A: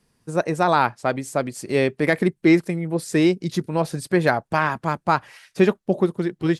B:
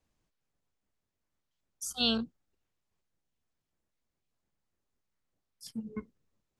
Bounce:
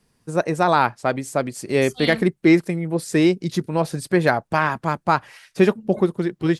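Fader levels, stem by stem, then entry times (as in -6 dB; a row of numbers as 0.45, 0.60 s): +1.0, -0.5 dB; 0.00, 0.00 s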